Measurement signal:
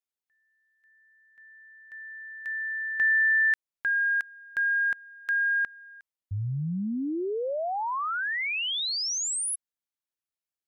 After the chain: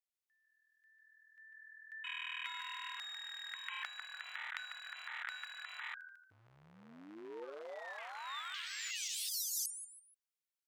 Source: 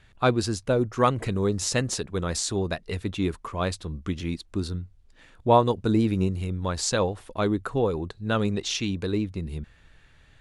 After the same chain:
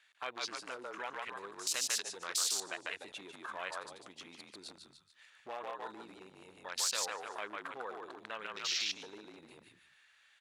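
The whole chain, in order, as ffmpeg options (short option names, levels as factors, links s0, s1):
-filter_complex "[0:a]asplit=5[s0][s1][s2][s3][s4];[s1]adelay=147,afreqshift=-40,volume=0.668[s5];[s2]adelay=294,afreqshift=-80,volume=0.221[s6];[s3]adelay=441,afreqshift=-120,volume=0.0724[s7];[s4]adelay=588,afreqshift=-160,volume=0.024[s8];[s0][s5][s6][s7][s8]amix=inputs=5:normalize=0,afwtdn=0.0178,acompressor=threshold=0.0224:ratio=6:attack=0.13:release=79:knee=6:detection=rms,highpass=1400,afftfilt=real='re*lt(hypot(re,im),0.02)':imag='im*lt(hypot(re,im),0.02)':win_size=1024:overlap=0.75,volume=3.76"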